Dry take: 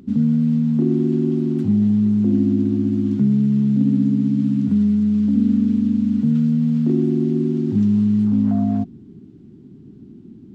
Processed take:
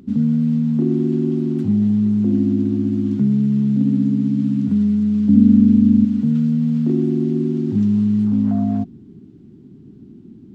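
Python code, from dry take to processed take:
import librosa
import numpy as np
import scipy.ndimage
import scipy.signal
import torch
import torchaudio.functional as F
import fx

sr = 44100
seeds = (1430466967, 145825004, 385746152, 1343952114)

y = fx.low_shelf(x, sr, hz=280.0, db=9.5, at=(5.29, 6.05))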